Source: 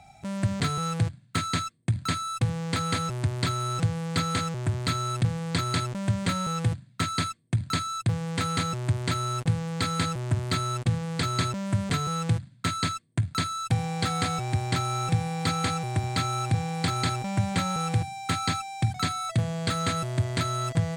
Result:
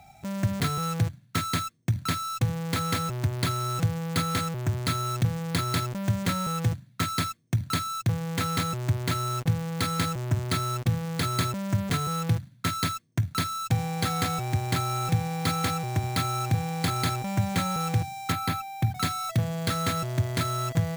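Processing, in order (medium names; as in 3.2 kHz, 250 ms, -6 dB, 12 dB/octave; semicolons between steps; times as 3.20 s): 18.32–18.95 s: treble shelf 4.8 kHz -11 dB; careless resampling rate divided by 3×, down none, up hold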